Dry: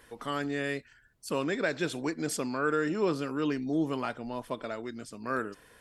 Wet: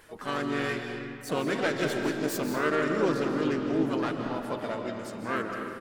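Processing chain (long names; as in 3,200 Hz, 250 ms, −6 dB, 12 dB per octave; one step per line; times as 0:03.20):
phase distortion by the signal itself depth 0.095 ms
pitch-shifted copies added −3 semitones −6 dB, +5 semitones −8 dB
convolution reverb RT60 2.3 s, pre-delay 115 ms, DRR 3.5 dB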